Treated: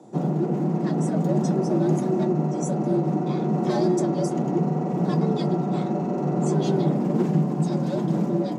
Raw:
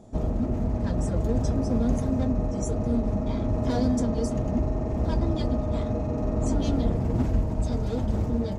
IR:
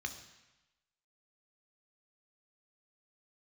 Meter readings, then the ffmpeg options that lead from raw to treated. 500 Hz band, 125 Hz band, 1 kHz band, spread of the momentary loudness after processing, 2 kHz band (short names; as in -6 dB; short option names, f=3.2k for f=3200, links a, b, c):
+5.0 dB, +2.0 dB, +7.0 dB, 3 LU, +3.0 dB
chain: -filter_complex "[0:a]afreqshift=110,asplit=2[a][b];[b]asplit=3[c][d][e];[c]bandpass=f=730:t=q:w=8,volume=0dB[f];[d]bandpass=f=1.09k:t=q:w=8,volume=-6dB[g];[e]bandpass=f=2.44k:t=q:w=8,volume=-9dB[h];[f][g][h]amix=inputs=3:normalize=0[i];[1:a]atrim=start_sample=2205[j];[i][j]afir=irnorm=-1:irlink=0,volume=-10dB[k];[a][k]amix=inputs=2:normalize=0,volume=2dB"